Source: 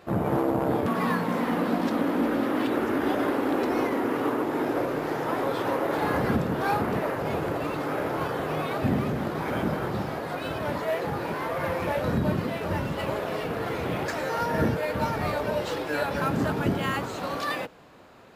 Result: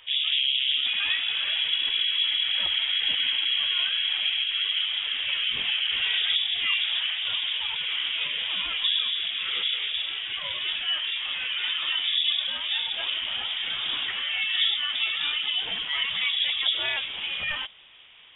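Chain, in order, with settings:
mains-hum notches 60/120/180/240 Hz
gate on every frequency bin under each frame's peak −30 dB strong
voice inversion scrambler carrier 3,600 Hz

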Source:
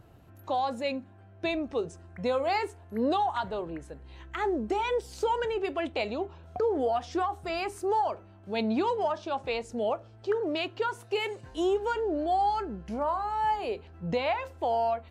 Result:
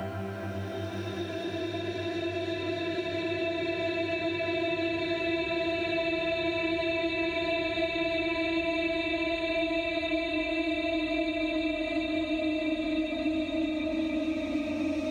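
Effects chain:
extreme stretch with random phases 47×, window 0.25 s, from 0:01.32
multiband upward and downward compressor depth 100%

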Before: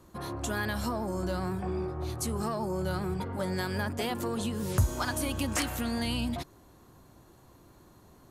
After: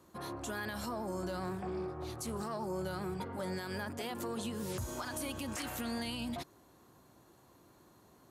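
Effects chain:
high-pass filter 180 Hz 6 dB per octave
brickwall limiter −26 dBFS, peak gain reduction 9 dB
0:01.43–0:02.67: highs frequency-modulated by the lows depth 0.15 ms
level −3.5 dB

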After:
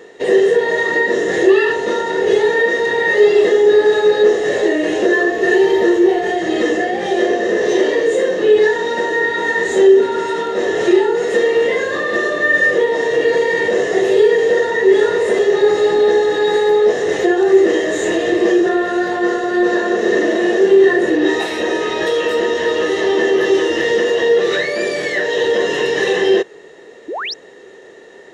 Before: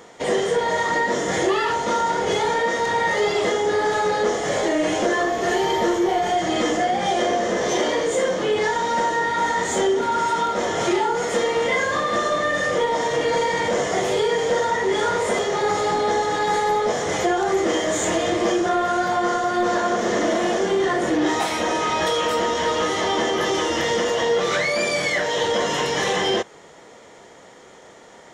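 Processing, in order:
hollow resonant body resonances 400/1,800/2,700/3,800 Hz, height 17 dB, ringing for 25 ms
sound drawn into the spectrogram rise, 0:27.08–0:27.34, 280–6,100 Hz −19 dBFS
level −4.5 dB

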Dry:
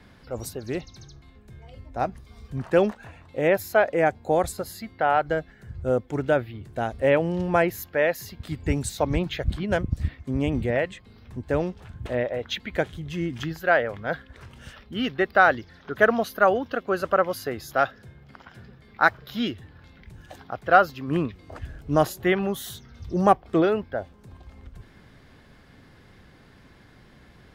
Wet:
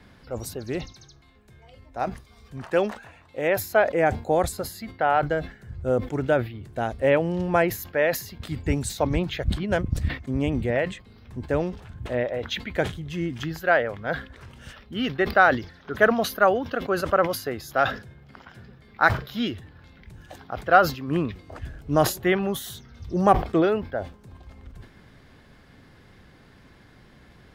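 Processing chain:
0:00.92–0:03.57: low-shelf EQ 360 Hz −8 dB
level that may fall only so fast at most 140 dB per second

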